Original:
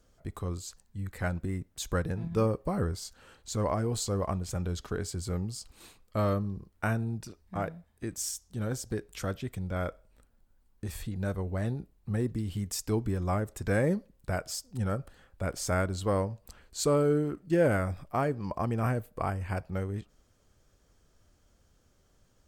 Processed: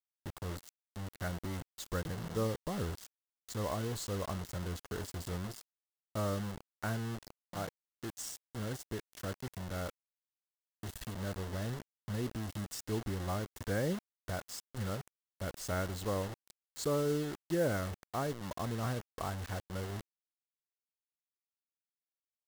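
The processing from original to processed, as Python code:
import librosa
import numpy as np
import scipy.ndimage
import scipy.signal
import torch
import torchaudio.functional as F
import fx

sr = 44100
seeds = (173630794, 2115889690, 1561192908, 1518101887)

y = fx.high_shelf(x, sr, hz=9900.0, db=-7.0)
y = fx.quant_dither(y, sr, seeds[0], bits=6, dither='none')
y = fx.notch(y, sr, hz=2400.0, q=8.5)
y = y * librosa.db_to_amplitude(-7.0)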